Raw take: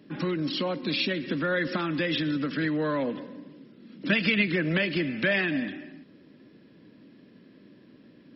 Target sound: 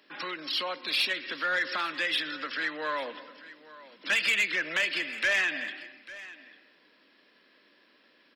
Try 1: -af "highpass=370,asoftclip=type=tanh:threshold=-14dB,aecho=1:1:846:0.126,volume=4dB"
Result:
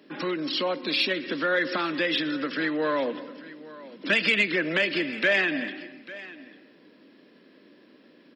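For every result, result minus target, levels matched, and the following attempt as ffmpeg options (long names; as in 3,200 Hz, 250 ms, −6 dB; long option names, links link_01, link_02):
soft clipping: distortion −13 dB; 500 Hz band +7.5 dB
-af "highpass=370,asoftclip=type=tanh:threshold=-23.5dB,aecho=1:1:846:0.126,volume=4dB"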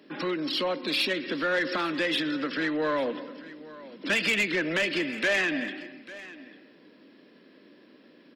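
500 Hz band +8.0 dB
-af "highpass=940,asoftclip=type=tanh:threshold=-23.5dB,aecho=1:1:846:0.126,volume=4dB"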